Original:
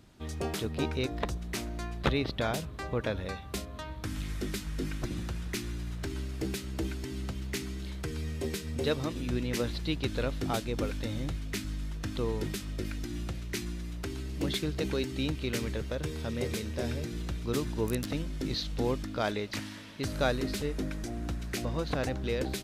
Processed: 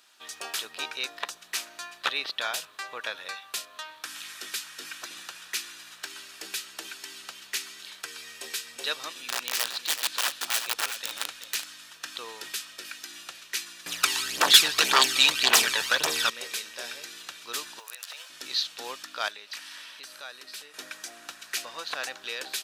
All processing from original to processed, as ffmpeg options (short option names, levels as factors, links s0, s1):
-filter_complex "[0:a]asettb=1/sr,asplit=3[s0][s1][s2];[s0]atrim=end=9.184[s3];[s1]atrim=start=9.18:end=11.64,asetpts=PTS-STARTPTS,afade=t=in:d=0.004:c=qsin,afade=t=out:st=2.456:d=0.004:c=qsin,asubboost=boost=3:cutoff=69,aeval=exprs='(mod(15.8*val(0)+1,2)-1)/15.8':c=same,aecho=1:1:380:0.335,atrim=end_sample=108486[s4];[s2]atrim=start=11.636[s5];[s3][s4]acrossfade=d=0.004:c1=hsin:c2=qsin[s6];[s6][s5]acrossfade=d=0.004:c1=qsin:c2=hsin,asettb=1/sr,asplit=3[s7][s8][s9];[s7]atrim=end=13.864[s10];[s8]atrim=start=13.86:end=16.3,asetpts=PTS-STARTPTS,afade=t=in:d=0.004:c=qsin,afade=t=out:st=2.436:d=0.004:c=qsin,highpass=55,aphaser=in_gain=1:out_gain=1:delay=1.2:decay=0.59:speed=1.8:type=triangular,aeval=exprs='0.211*sin(PI/2*3.16*val(0)/0.211)':c=same[s11];[s9]atrim=start=16.296[s12];[s10][s11]acrossfade=d=0.004:c1=hsin:c2=qsin[s13];[s13][s12]acrossfade=d=0.004:c1=qsin:c2=hsin,asettb=1/sr,asplit=3[s14][s15][s16];[s14]atrim=end=17.794[s17];[s15]atrim=start=17.79:end=18.3,asetpts=PTS-STARTPTS,afade=t=in:d=0.004:c=qsin,afade=t=out:st=0.506:d=0.004:c=qsin,highpass=f=530:w=0.5412,highpass=f=530:w=1.3066,acompressor=threshold=0.00891:ratio=12:attack=3.2:release=140:knee=1:detection=peak,acrusher=bits=7:mode=log:mix=0:aa=0.000001[s18];[s16]atrim=start=18.296[s19];[s17][s18]acrossfade=d=0.004:c1=hsin:c2=qsin[s20];[s20][s19]acrossfade=d=0.004:c1=qsin:c2=hsin,asettb=1/sr,asplit=3[s21][s22][s23];[s21]atrim=end=19.284[s24];[s22]atrim=start=19.28:end=20.74,asetpts=PTS-STARTPTS,afade=t=in:d=0.004:c=qsin,afade=t=out:st=1.456:d=0.004:c=qsin,bandreject=f=6800:w=18,acompressor=threshold=0.00891:ratio=3:attack=3.2:release=140:knee=1:detection=peak[s25];[s23]atrim=start=20.736[s26];[s24][s25]acrossfade=d=0.004:c1=hsin:c2=qsin[s27];[s27][s26]acrossfade=d=0.004:c1=qsin:c2=hsin,highpass=1400,bandreject=f=2100:w=8.9,volume=2.51"